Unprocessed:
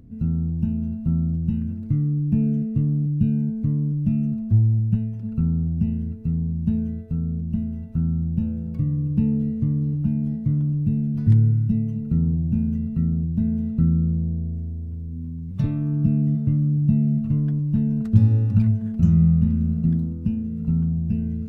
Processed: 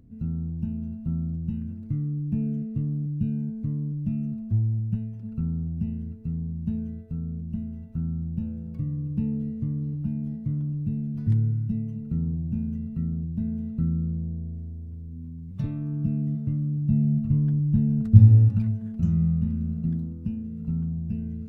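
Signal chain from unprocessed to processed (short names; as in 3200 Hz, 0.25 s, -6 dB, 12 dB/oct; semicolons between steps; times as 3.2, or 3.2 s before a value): 16.89–18.48 bell 63 Hz +8 dB -> +14.5 dB 2.8 oct; gain -6.5 dB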